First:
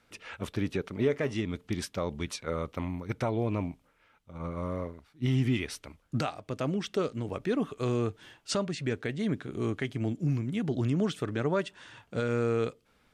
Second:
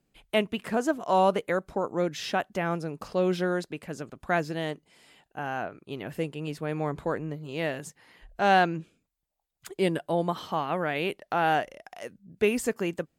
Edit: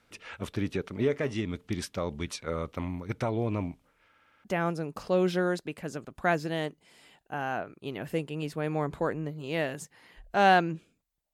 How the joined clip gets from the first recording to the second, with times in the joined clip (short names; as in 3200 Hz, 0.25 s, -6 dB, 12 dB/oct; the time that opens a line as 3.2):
first
4.08 stutter in place 0.06 s, 6 plays
4.44 switch to second from 2.49 s